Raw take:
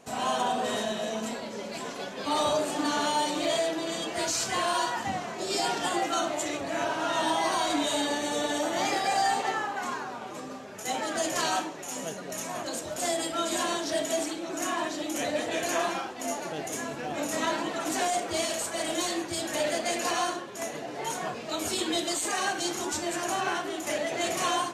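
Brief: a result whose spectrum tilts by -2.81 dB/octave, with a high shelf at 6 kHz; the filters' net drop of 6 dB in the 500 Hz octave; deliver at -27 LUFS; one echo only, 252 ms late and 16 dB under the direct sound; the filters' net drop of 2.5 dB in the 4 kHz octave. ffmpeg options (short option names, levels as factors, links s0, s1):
-af "equalizer=f=500:t=o:g=-9,equalizer=f=4000:t=o:g=-5,highshelf=f=6000:g=5.5,aecho=1:1:252:0.158,volume=1.58"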